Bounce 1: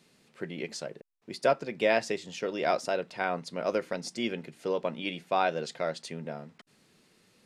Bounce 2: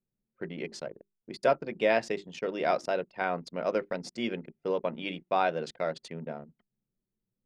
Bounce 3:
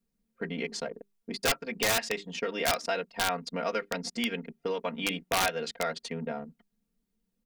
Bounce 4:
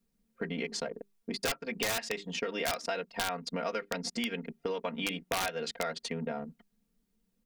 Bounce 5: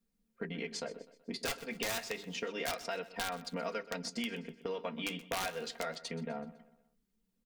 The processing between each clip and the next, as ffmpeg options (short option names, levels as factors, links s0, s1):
-af "bandreject=f=50:t=h:w=6,bandreject=f=100:t=h:w=6,bandreject=f=150:t=h:w=6,bandreject=f=200:t=h:w=6,bandreject=f=250:t=h:w=6,bandreject=f=300:t=h:w=6,bandreject=f=350:t=h:w=6,bandreject=f=400:t=h:w=6,anlmdn=0.158,aemphasis=mode=reproduction:type=cd"
-filter_complex "[0:a]aecho=1:1:4.3:0.96,acrossover=split=1200[s0][s1];[s0]acompressor=threshold=0.0158:ratio=4[s2];[s2][s1]amix=inputs=2:normalize=0,aeval=exprs='(mod(12.6*val(0)+1,2)-1)/12.6':c=same,volume=1.58"
-af "acompressor=threshold=0.0158:ratio=2.5,volume=1.41"
-af "flanger=delay=3.7:depth=9.1:regen=-62:speed=0.3:shape=sinusoidal,aecho=1:1:126|252|378|504:0.141|0.065|0.0299|0.0137"